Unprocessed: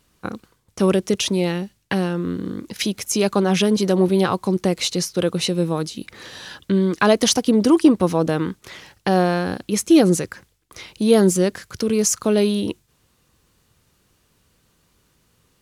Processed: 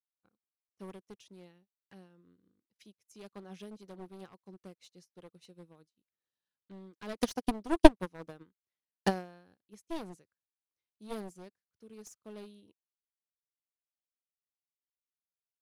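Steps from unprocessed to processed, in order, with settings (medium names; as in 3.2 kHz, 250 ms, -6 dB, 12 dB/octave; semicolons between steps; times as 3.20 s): one-sided wavefolder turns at -13.5 dBFS; 7.19–9.58 s: transient shaper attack +11 dB, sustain -1 dB; upward expansion 2.5:1, over -37 dBFS; trim -7 dB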